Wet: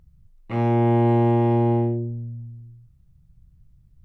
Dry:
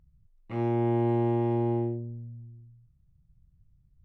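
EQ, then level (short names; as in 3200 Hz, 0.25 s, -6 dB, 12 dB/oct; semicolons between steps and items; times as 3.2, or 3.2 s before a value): notches 50/100/150/200/250/300/350 Hz; +9.0 dB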